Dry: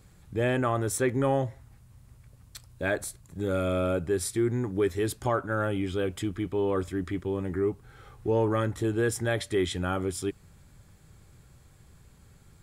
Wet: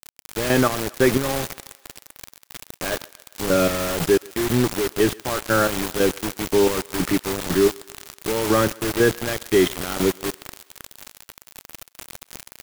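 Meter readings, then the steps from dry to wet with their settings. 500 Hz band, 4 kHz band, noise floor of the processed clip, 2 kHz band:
+7.0 dB, +12.5 dB, -65 dBFS, +8.5 dB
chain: HPF 130 Hz 24 dB/oct; in parallel at +1 dB: limiter -21 dBFS, peak gain reduction 8 dB; on the sum: downsampling 8000 Hz; chopper 2 Hz, depth 65%, duty 35%; added noise pink -39 dBFS; bit-crush 5-bit; thinning echo 0.133 s, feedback 64%, high-pass 420 Hz, level -23 dB; gain +5 dB

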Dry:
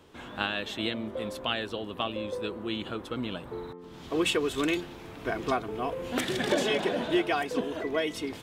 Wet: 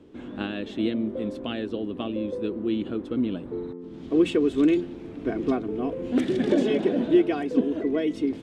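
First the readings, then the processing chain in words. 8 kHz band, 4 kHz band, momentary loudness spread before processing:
under -10 dB, -7.0 dB, 9 LU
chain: EQ curve 130 Hz 0 dB, 280 Hz +10 dB, 930 Hz -9 dB, 2300 Hz -7 dB, 9200 Hz -13 dB, 13000 Hz -23 dB; gain +1.5 dB

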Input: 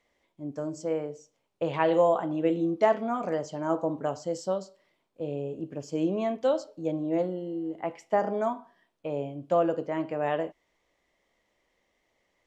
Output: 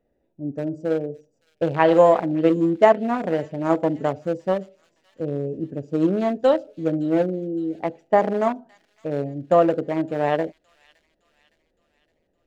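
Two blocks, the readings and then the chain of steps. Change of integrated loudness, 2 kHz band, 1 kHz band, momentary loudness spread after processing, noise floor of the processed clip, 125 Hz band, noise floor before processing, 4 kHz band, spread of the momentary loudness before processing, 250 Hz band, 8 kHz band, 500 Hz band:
+7.5 dB, +7.5 dB, +7.0 dB, 12 LU, -71 dBFS, +8.5 dB, -75 dBFS, +5.5 dB, 11 LU, +7.5 dB, n/a, +7.0 dB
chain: Wiener smoothing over 41 samples; on a send: thin delay 0.564 s, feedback 50%, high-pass 3600 Hz, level -13.5 dB; on the sum: gain +8.5 dB

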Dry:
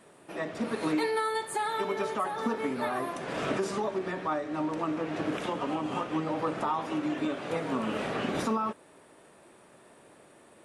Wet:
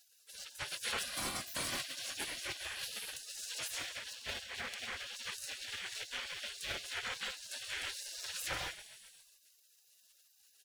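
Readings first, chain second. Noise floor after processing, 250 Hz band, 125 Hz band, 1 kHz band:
-68 dBFS, -25.0 dB, -15.0 dB, -17.5 dB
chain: minimum comb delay 0.91 ms; frequency-shifting echo 0.132 s, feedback 63%, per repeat +39 Hz, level -15 dB; spectral gate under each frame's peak -25 dB weak; gain +8 dB

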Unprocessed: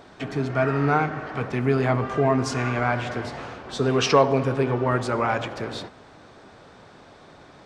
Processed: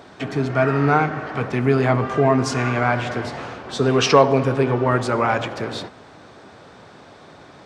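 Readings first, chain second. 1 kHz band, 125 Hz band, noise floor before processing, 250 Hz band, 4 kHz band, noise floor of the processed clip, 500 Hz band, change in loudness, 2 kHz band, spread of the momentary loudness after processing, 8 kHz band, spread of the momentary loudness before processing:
+4.0 dB, +3.5 dB, -49 dBFS, +4.0 dB, +4.0 dB, -45 dBFS, +4.0 dB, +4.0 dB, +4.0 dB, 14 LU, +4.0 dB, 14 LU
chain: HPF 68 Hz; gain +4 dB

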